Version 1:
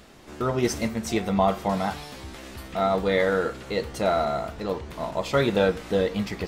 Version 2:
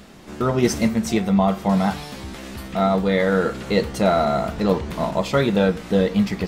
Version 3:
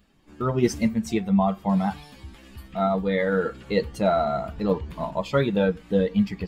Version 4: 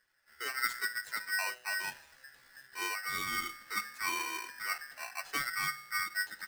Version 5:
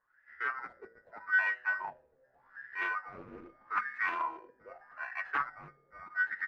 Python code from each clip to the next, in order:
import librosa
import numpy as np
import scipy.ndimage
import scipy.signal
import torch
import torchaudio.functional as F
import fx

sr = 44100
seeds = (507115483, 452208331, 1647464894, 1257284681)

y1 = fx.peak_eq(x, sr, hz=190.0, db=7.5, octaves=0.64)
y1 = fx.rider(y1, sr, range_db=4, speed_s=0.5)
y1 = y1 * 10.0 ** (3.5 / 20.0)
y2 = fx.bin_expand(y1, sr, power=1.5)
y2 = fx.high_shelf(y2, sr, hz=3900.0, db=-6.5)
y2 = y2 * 10.0 ** (-1.0 / 20.0)
y3 = fx.comb_fb(y2, sr, f0_hz=120.0, decay_s=0.79, harmonics='all', damping=0.0, mix_pct=60)
y3 = y3 * np.sign(np.sin(2.0 * np.pi * 1700.0 * np.arange(len(y3)) / sr))
y3 = y3 * 10.0 ** (-6.5 / 20.0)
y4 = fx.filter_lfo_lowpass(y3, sr, shape='sine', hz=0.82, low_hz=460.0, high_hz=1900.0, q=6.1)
y4 = fx.doppler_dist(y4, sr, depth_ms=0.26)
y4 = y4 * 10.0 ** (-4.0 / 20.0)